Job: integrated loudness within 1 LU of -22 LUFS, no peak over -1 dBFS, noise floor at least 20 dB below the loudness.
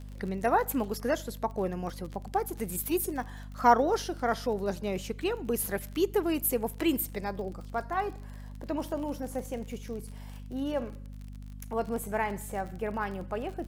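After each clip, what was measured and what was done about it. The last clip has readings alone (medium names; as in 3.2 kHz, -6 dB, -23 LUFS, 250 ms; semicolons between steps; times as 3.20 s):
tick rate 42 per s; hum 50 Hz; highest harmonic 250 Hz; hum level -40 dBFS; loudness -31.5 LUFS; peak level -8.0 dBFS; loudness target -22.0 LUFS
-> de-click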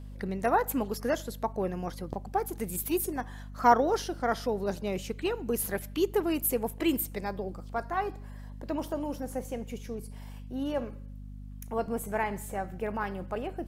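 tick rate 0.29 per s; hum 50 Hz; highest harmonic 250 Hz; hum level -40 dBFS
-> de-hum 50 Hz, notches 5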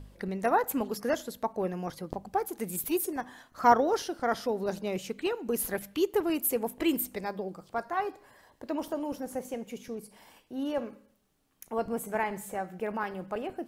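hum not found; loudness -31.5 LUFS; peak level -8.0 dBFS; loudness target -22.0 LUFS
-> trim +9.5 dB; peak limiter -1 dBFS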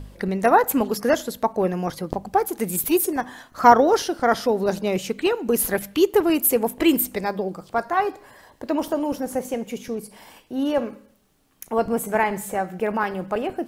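loudness -22.5 LUFS; peak level -1.0 dBFS; noise floor -57 dBFS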